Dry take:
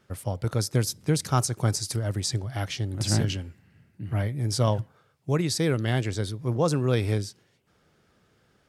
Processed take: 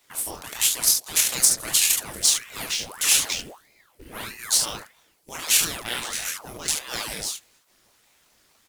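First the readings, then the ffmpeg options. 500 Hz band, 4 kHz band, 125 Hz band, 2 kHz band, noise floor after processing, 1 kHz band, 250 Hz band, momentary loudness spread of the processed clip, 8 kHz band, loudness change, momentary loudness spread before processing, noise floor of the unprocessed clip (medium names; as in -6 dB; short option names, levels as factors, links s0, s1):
-12.0 dB, +10.0 dB, -22.5 dB, +7.0 dB, -63 dBFS, -2.5 dB, -14.0 dB, 17 LU, +14.0 dB, +5.5 dB, 7 LU, -66 dBFS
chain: -filter_complex "[0:a]afftfilt=real='re*lt(hypot(re,im),0.2)':imag='im*lt(hypot(re,im),0.2)':win_size=1024:overlap=0.75,crystalizer=i=7.5:c=0,acrusher=bits=3:mode=log:mix=0:aa=0.000001,asplit=2[s0][s1];[s1]aecho=0:1:25|38|72:0.631|0.473|0.501[s2];[s0][s2]amix=inputs=2:normalize=0,aeval=exprs='val(0)*sin(2*PI*1200*n/s+1200*0.9/1.6*sin(2*PI*1.6*n/s))':c=same,volume=0.631"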